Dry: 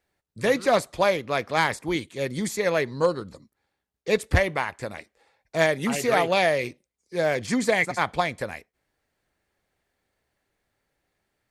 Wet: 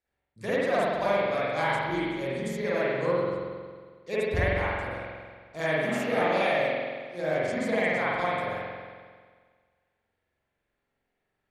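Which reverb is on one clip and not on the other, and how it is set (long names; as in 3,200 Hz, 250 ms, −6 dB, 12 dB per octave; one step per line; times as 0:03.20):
spring reverb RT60 1.7 s, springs 45 ms, chirp 75 ms, DRR −9.5 dB
level −13 dB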